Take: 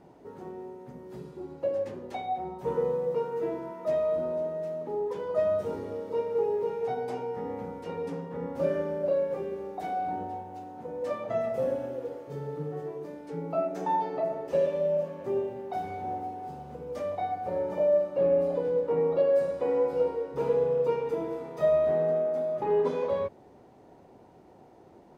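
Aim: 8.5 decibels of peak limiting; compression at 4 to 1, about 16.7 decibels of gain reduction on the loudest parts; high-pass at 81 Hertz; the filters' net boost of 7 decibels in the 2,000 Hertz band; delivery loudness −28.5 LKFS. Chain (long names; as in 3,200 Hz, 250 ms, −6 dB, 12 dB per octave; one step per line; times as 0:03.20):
high-pass filter 81 Hz
parametric band 2,000 Hz +8.5 dB
downward compressor 4 to 1, threshold −41 dBFS
level +17 dB
brickwall limiter −21 dBFS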